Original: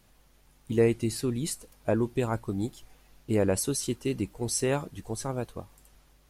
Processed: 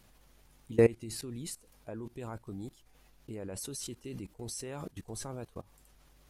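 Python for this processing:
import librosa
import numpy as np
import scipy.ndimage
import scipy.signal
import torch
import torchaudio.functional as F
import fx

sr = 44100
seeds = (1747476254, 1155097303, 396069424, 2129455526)

y = fx.level_steps(x, sr, step_db=21)
y = y * librosa.db_to_amplitude(1.5)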